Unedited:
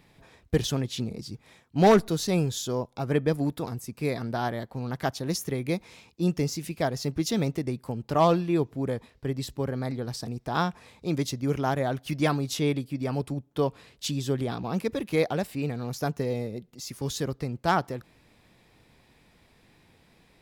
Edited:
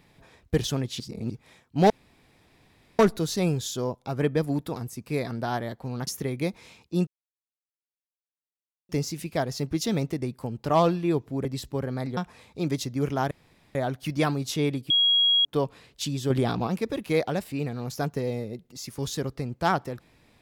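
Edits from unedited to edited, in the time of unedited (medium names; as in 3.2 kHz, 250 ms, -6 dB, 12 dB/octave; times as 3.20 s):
1.00–1.30 s: reverse
1.90 s: insert room tone 1.09 s
4.98–5.34 s: delete
6.34 s: insert silence 1.82 s
8.90–9.30 s: delete
10.02–10.64 s: delete
11.78 s: insert room tone 0.44 s
12.93–13.48 s: bleep 3.3 kHz -17.5 dBFS
14.33–14.70 s: gain +5.5 dB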